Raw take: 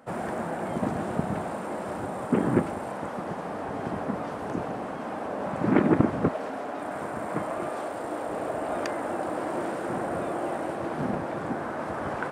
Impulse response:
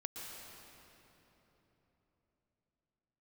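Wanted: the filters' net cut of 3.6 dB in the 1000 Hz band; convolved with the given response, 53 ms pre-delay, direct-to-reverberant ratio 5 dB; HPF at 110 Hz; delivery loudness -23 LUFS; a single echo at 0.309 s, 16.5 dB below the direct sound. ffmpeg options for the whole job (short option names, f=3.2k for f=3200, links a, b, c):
-filter_complex "[0:a]highpass=110,equalizer=f=1k:t=o:g=-5,aecho=1:1:309:0.15,asplit=2[a][b];[1:a]atrim=start_sample=2205,adelay=53[c];[b][c]afir=irnorm=-1:irlink=0,volume=-4dB[d];[a][d]amix=inputs=2:normalize=0,volume=7dB"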